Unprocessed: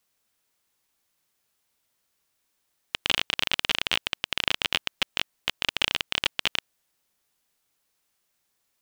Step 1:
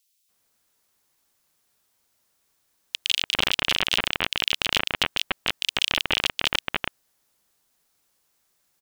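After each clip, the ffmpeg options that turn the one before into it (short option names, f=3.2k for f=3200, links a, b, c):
-filter_complex "[0:a]acrossover=split=2600[a][b];[a]adelay=290[c];[c][b]amix=inputs=2:normalize=0,volume=5dB"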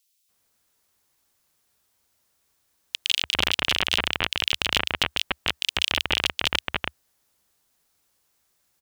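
-af "equalizer=f=73:t=o:w=0.7:g=7"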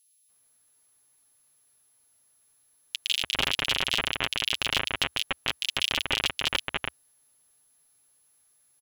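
-filter_complex "[0:a]aecho=1:1:7.4:0.38,asplit=2[a][b];[b]asoftclip=type=hard:threshold=-15.5dB,volume=-7.5dB[c];[a][c]amix=inputs=2:normalize=0,aeval=exprs='val(0)+0.00126*sin(2*PI*11000*n/s)':c=same,volume=-5.5dB"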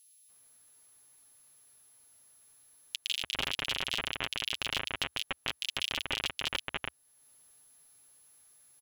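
-af "acompressor=threshold=-52dB:ratio=1.5,volume=4dB"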